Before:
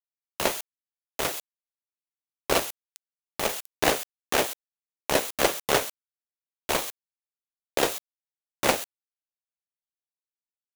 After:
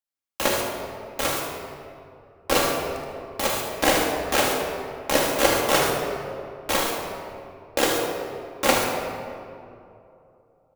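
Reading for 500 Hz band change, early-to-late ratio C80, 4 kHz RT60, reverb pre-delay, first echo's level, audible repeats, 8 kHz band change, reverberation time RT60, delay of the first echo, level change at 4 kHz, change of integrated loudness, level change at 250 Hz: +5.0 dB, 3.0 dB, 1.3 s, 4 ms, -7.0 dB, 1, +3.5 dB, 2.7 s, 76 ms, +4.0 dB, +3.0 dB, +6.5 dB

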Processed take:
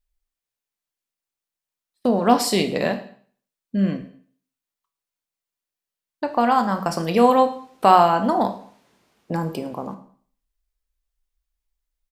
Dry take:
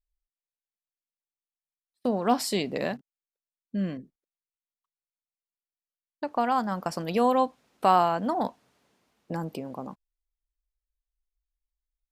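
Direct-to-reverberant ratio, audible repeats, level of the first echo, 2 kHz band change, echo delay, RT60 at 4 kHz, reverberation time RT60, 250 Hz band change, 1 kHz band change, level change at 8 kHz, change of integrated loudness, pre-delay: 7.0 dB, 2, -21.0 dB, +7.5 dB, 109 ms, 0.50 s, 0.55 s, +7.5 dB, +7.5 dB, +7.5 dB, +7.5 dB, 15 ms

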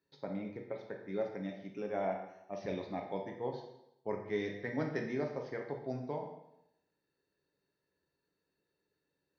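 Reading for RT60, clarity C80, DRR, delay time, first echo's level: 0.85 s, 8.5 dB, 1.5 dB, no echo, no echo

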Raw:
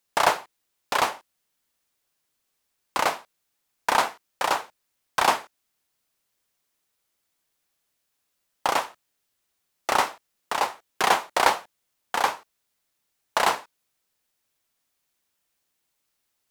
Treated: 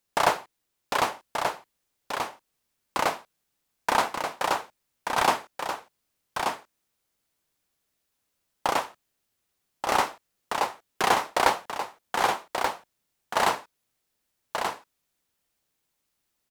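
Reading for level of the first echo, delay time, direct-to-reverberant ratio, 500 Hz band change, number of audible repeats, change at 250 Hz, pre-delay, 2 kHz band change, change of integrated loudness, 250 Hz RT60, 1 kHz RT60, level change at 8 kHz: -5.5 dB, 1182 ms, no reverb, 0.0 dB, 1, +2.0 dB, no reverb, -1.5 dB, -2.5 dB, no reverb, no reverb, -2.0 dB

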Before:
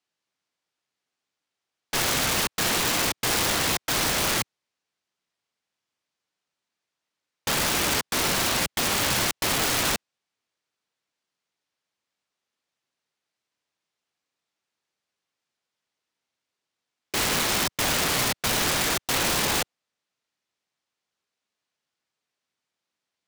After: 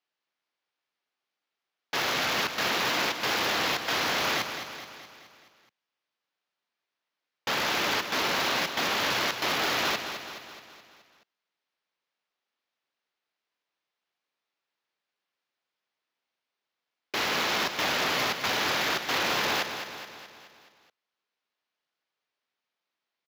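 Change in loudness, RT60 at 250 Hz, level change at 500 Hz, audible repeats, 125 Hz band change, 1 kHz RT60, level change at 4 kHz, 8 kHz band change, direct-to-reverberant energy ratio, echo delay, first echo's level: -3.5 dB, no reverb, -1.5 dB, 6, -9.5 dB, no reverb, -2.0 dB, -11.0 dB, no reverb, 212 ms, -9.0 dB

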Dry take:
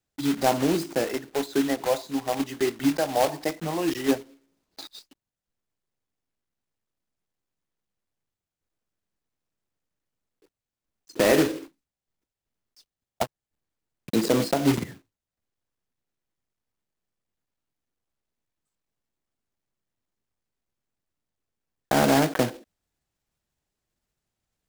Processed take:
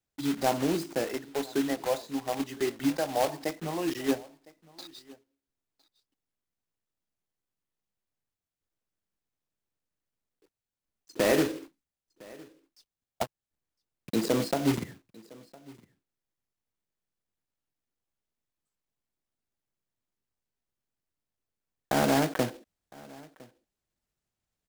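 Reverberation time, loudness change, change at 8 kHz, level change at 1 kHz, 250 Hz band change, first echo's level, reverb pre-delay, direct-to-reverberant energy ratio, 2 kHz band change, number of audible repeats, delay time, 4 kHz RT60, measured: no reverb, -4.5 dB, -4.5 dB, -4.5 dB, -4.5 dB, -23.5 dB, no reverb, no reverb, -4.5 dB, 1, 1009 ms, no reverb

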